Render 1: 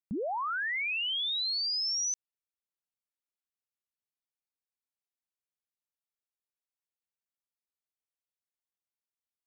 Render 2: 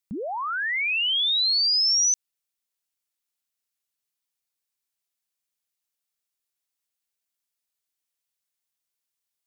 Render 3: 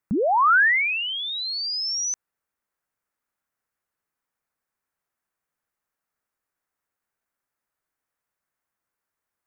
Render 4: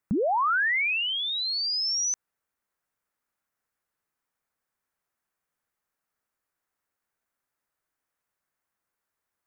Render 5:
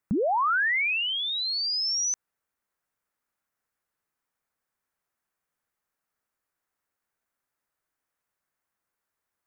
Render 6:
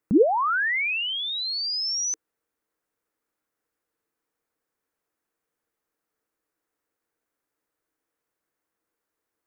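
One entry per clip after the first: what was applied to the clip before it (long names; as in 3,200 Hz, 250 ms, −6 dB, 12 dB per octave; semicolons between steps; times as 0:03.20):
high-shelf EQ 2,100 Hz +10 dB; level +1.5 dB
high shelf with overshoot 2,300 Hz −13 dB, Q 1.5; level +9 dB
downward compressor, threshold −23 dBFS, peak gain reduction 7.5 dB
no processing that can be heard
hollow resonant body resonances 320/450 Hz, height 12 dB, ringing for 45 ms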